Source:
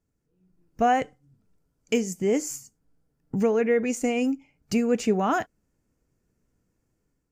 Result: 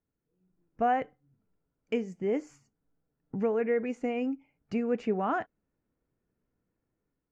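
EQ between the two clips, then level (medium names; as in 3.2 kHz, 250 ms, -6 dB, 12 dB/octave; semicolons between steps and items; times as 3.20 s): low-pass 2.1 kHz 12 dB/octave; bass shelf 180 Hz -6.5 dB; -4.5 dB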